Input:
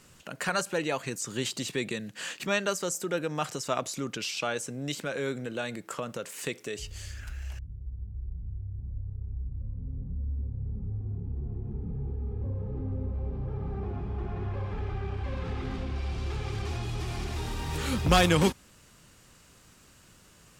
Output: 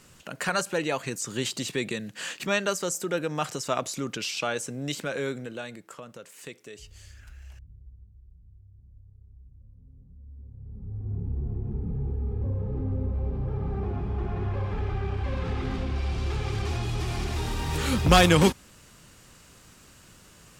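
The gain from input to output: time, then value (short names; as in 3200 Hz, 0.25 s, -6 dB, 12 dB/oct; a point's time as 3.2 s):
5.2 s +2 dB
5.97 s -8 dB
7.79 s -8 dB
8.21 s -15.5 dB
10.16 s -15.5 dB
10.65 s -8.5 dB
11.17 s +4 dB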